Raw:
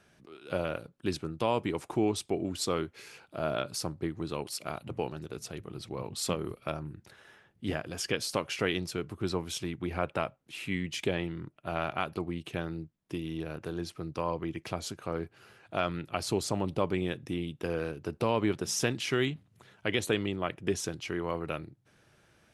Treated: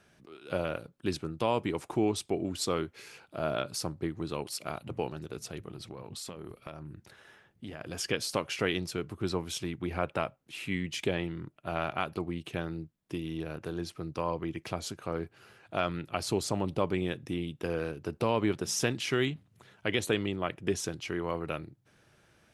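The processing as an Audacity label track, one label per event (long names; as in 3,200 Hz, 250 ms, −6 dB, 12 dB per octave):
5.680000	7.810000	downward compressor, threshold −38 dBFS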